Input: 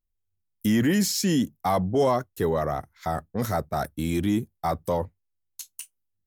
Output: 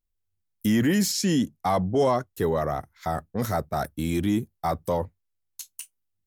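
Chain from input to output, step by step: 1.12–2.27 LPF 11000 Hz 12 dB/oct

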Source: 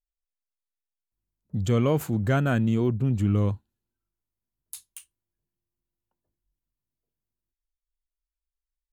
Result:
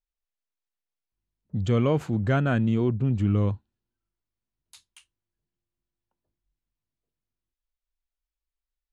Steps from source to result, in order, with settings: LPF 4800 Hz 12 dB/oct

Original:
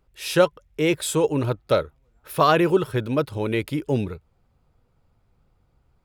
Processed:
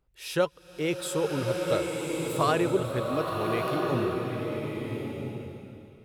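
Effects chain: bloom reverb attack 1.33 s, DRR 0.5 dB; gain -8 dB

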